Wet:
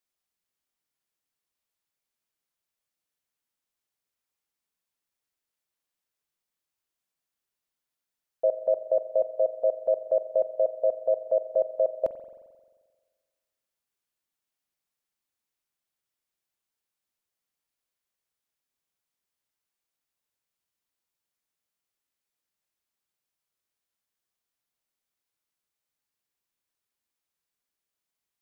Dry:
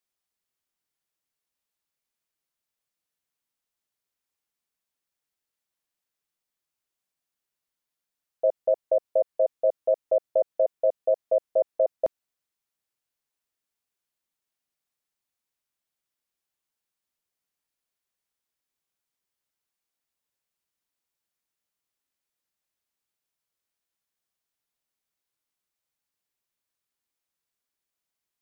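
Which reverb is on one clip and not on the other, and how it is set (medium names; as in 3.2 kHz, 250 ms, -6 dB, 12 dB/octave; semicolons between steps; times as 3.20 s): spring tank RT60 1.5 s, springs 44 ms, chirp 35 ms, DRR 11 dB; trim -1 dB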